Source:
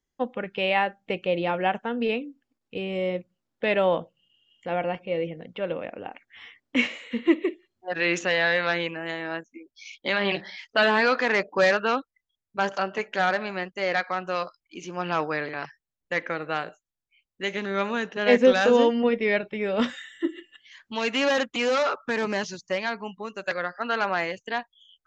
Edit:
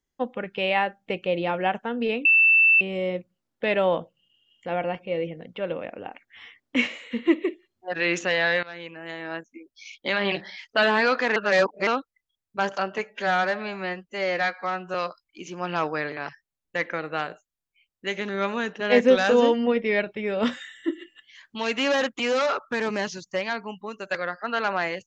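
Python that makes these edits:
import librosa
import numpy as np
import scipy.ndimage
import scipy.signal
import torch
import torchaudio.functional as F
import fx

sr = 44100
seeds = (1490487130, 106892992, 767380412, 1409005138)

y = fx.edit(x, sr, fx.bleep(start_s=2.25, length_s=0.56, hz=2660.0, db=-13.5),
    fx.fade_in_from(start_s=8.63, length_s=0.83, floor_db=-20.0),
    fx.reverse_span(start_s=11.36, length_s=0.51),
    fx.stretch_span(start_s=13.04, length_s=1.27, factor=1.5), tone=tone)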